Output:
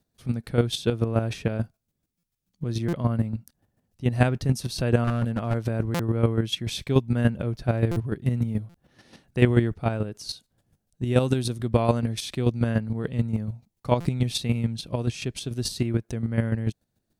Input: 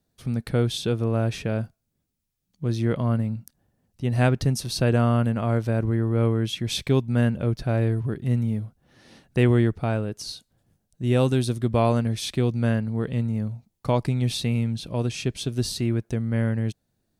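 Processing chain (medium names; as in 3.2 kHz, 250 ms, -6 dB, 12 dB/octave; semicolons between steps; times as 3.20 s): square tremolo 6.9 Hz, depth 60%, duty 20%; 5.04–5.55 s: hard clipper -22.5 dBFS, distortion -20 dB; buffer glitch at 2.18/2.88/5.94/7.91/8.69/14.00 s, samples 256, times 8; trim +3.5 dB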